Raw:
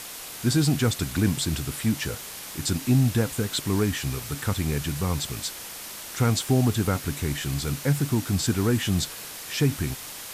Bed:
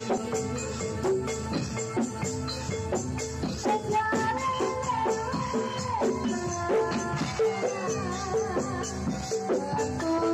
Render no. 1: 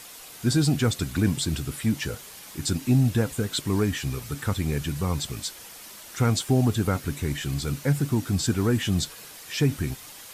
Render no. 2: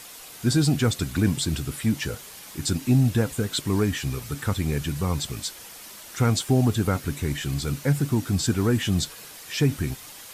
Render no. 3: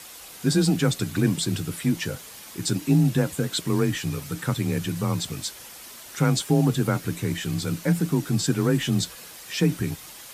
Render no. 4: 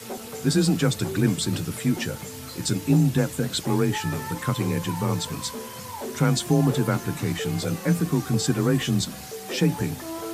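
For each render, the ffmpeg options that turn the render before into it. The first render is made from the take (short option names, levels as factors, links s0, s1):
-af "afftdn=nr=7:nf=-39"
-af "volume=1.12"
-af "afreqshift=27"
-filter_complex "[1:a]volume=0.422[s0];[0:a][s0]amix=inputs=2:normalize=0"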